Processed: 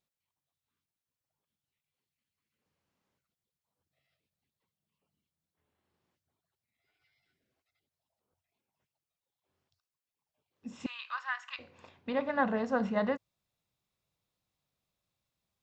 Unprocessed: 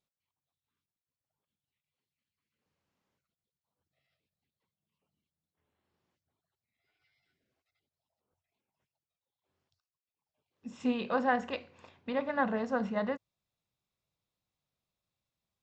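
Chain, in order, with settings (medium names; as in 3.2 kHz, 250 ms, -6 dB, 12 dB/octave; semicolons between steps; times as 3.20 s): gain riding; 10.86–11.59 s: Chebyshev high-pass 1.1 kHz, order 4; trim +2 dB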